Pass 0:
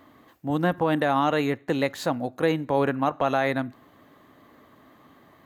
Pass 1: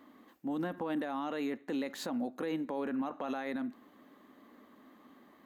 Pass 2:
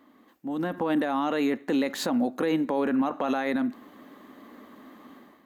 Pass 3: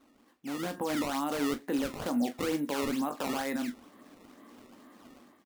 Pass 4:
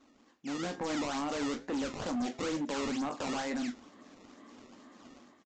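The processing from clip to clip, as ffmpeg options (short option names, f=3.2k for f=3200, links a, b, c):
-af "lowshelf=f=170:t=q:w=3:g=-8,bandreject=f=660:w=18,alimiter=limit=-21dB:level=0:latency=1:release=34,volume=-6.5dB"
-af "dynaudnorm=f=430:g=3:m=10dB"
-filter_complex "[0:a]acrusher=samples=16:mix=1:aa=0.000001:lfo=1:lforange=25.6:lforate=2.2,asplit=2[a][b];[b]aecho=0:1:21|41:0.335|0.188[c];[a][c]amix=inputs=2:normalize=0,volume=-6dB"
-af "flanger=delay=7.1:depth=4.8:regen=-85:speed=1.1:shape=sinusoidal,crystalizer=i=1:c=0,aresample=16000,volume=34.5dB,asoftclip=hard,volume=-34.5dB,aresample=44100,volume=4dB"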